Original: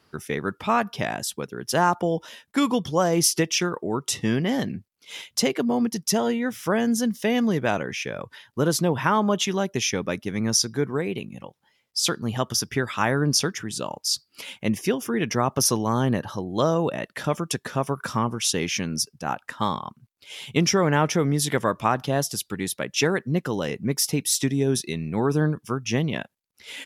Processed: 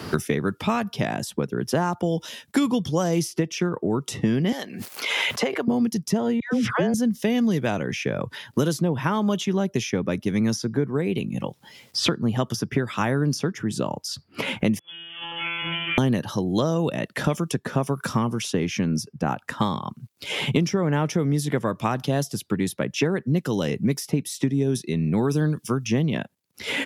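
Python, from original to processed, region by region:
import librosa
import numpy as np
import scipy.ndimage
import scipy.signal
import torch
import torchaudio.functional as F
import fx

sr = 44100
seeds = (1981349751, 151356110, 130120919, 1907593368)

y = fx.chain(x, sr, fx.highpass(hz=670.0, slope=12),
    fx.pre_swell(db_per_s=36.0), at=(4.52, 5.68))
y = fx.chain(y, sr, fx.lowpass(hz=4100.0, slope=12),
    fx.dispersion(late='lows', ms=129.0, hz=990.0),
    fx.sustainer(db_per_s=28.0), at=(6.4, 6.94))
y = fx.chain(y, sr, fx.lower_of_two(delay_ms=3.9),
    fx.comb_fb(f0_hz=170.0, decay_s=1.3, harmonics='all', damping=0.0, mix_pct=100),
    fx.freq_invert(carrier_hz=3400), at=(14.79, 15.98))
y = scipy.signal.sosfilt(scipy.signal.butter(2, 94.0, 'highpass', fs=sr, output='sos'), y)
y = fx.low_shelf(y, sr, hz=460.0, db=10.0)
y = fx.band_squash(y, sr, depth_pct=100)
y = F.gain(torch.from_numpy(y), -6.0).numpy()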